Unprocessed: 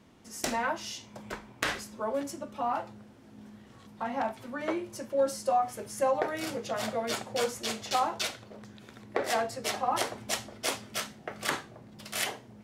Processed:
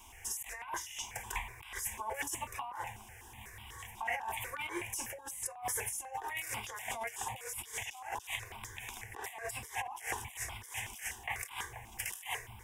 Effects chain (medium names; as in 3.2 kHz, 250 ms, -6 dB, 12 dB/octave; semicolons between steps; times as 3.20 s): amplifier tone stack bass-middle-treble 10-0-10; compressor with a negative ratio -50 dBFS, ratio -1; static phaser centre 880 Hz, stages 8; stepped phaser 8.1 Hz 490–1800 Hz; trim +14.5 dB